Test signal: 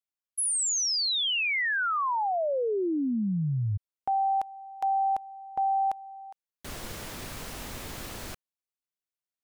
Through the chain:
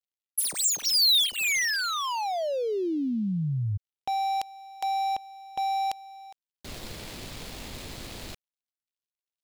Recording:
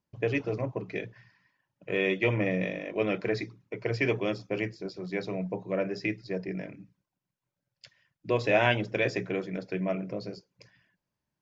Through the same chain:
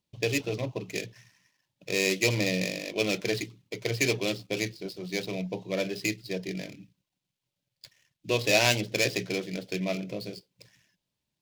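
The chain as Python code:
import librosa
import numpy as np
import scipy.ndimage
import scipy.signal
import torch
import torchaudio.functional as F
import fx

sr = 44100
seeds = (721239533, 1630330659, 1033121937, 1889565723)

y = scipy.ndimage.median_filter(x, 15, mode='constant')
y = fx.high_shelf_res(y, sr, hz=2100.0, db=12.5, q=1.5)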